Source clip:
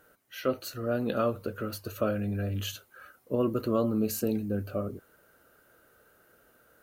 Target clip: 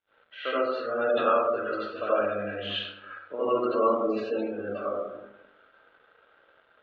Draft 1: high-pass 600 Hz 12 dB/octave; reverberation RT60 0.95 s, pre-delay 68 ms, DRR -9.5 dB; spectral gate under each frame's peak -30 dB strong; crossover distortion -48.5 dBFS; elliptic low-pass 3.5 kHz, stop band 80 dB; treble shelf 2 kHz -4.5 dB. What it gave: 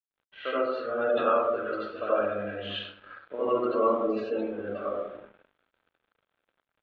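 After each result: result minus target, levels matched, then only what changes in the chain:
crossover distortion: distortion +8 dB; 4 kHz band -3.0 dB
change: crossover distortion -58 dBFS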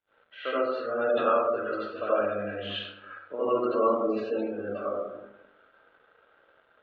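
4 kHz band -3.0 dB
remove: treble shelf 2 kHz -4.5 dB

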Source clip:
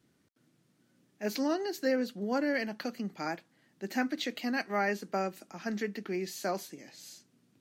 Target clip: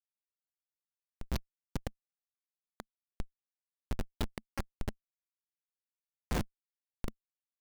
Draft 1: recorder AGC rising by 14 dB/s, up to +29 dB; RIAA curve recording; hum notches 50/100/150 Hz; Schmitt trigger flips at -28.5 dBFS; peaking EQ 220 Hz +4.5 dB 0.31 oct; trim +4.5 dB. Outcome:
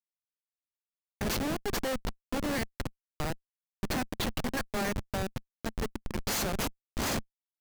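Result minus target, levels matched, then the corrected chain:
Schmitt trigger: distortion -25 dB
recorder AGC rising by 14 dB/s, up to +29 dB; RIAA curve recording; hum notches 50/100/150 Hz; Schmitt trigger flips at -20.5 dBFS; peaking EQ 220 Hz +4.5 dB 0.31 oct; trim +4.5 dB

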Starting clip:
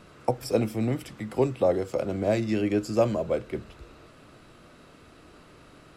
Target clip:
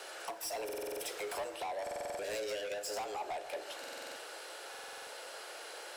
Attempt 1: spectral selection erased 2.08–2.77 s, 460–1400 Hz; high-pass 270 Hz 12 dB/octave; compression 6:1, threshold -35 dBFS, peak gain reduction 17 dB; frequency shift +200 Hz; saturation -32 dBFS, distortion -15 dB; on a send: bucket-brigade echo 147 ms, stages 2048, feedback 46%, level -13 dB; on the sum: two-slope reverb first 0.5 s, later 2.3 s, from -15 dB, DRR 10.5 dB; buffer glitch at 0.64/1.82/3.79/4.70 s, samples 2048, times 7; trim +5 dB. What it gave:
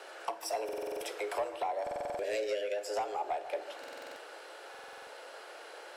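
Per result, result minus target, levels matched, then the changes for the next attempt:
8 kHz band -7.0 dB; saturation: distortion -8 dB
add after high-pass: treble shelf 3.4 kHz +11 dB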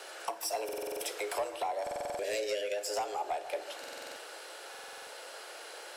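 saturation: distortion -8 dB
change: saturation -41 dBFS, distortion -7 dB

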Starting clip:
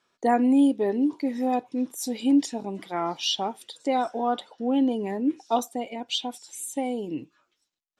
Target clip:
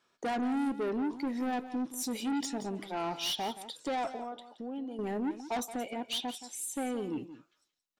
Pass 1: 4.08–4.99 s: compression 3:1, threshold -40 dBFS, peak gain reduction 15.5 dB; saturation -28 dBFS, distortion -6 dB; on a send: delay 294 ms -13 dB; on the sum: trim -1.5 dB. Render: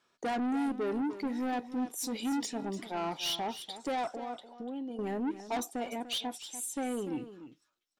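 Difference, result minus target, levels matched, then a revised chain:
echo 120 ms late
4.08–4.99 s: compression 3:1, threshold -40 dBFS, peak gain reduction 15.5 dB; saturation -28 dBFS, distortion -6 dB; on a send: delay 174 ms -13 dB; on the sum: trim -1.5 dB

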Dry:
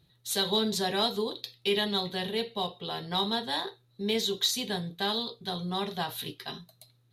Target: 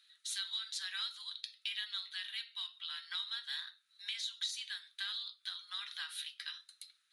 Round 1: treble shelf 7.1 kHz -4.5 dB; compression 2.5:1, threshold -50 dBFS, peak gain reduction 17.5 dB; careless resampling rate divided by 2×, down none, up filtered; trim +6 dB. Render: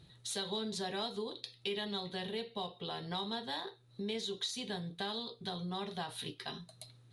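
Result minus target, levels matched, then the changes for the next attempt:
1 kHz band +13.0 dB
add first: elliptic high-pass 1.4 kHz, stop band 70 dB

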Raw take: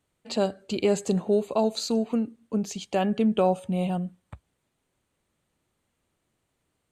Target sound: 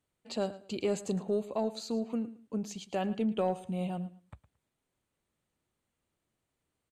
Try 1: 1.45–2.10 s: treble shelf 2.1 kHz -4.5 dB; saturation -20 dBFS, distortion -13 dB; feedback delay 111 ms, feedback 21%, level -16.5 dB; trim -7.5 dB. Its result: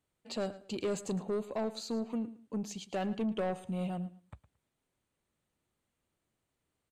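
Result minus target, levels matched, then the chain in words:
saturation: distortion +16 dB
1.45–2.10 s: treble shelf 2.1 kHz -4.5 dB; saturation -9 dBFS, distortion -29 dB; feedback delay 111 ms, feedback 21%, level -16.5 dB; trim -7.5 dB

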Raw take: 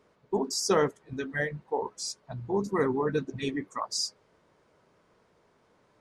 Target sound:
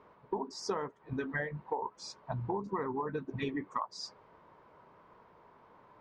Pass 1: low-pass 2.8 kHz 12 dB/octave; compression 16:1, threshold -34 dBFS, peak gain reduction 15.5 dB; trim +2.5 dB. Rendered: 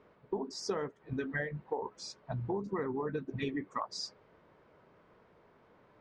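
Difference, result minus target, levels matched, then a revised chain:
1 kHz band -4.0 dB
low-pass 2.8 kHz 12 dB/octave; peaking EQ 980 Hz +10 dB 0.61 oct; compression 16:1, threshold -34 dBFS, peak gain reduction 18 dB; trim +2.5 dB

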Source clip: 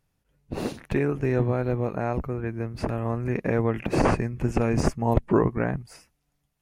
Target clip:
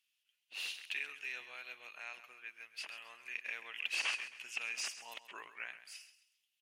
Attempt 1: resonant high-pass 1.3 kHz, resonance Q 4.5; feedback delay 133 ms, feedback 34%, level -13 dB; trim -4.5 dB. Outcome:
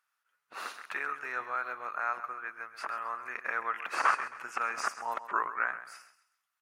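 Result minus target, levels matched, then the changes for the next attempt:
1 kHz band +15.0 dB
change: resonant high-pass 2.9 kHz, resonance Q 4.5

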